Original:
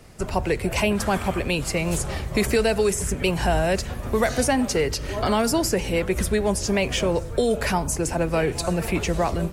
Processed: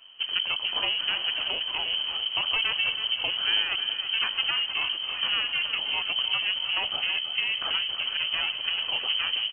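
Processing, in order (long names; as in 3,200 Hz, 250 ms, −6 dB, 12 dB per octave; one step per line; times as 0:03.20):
lower of the sound and its delayed copy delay 0.49 ms
low-shelf EQ 140 Hz +6 dB
on a send: repeating echo 325 ms, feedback 49%, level −10 dB
on the sum: voice inversion scrambler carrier 3,100 Hz
level −7.5 dB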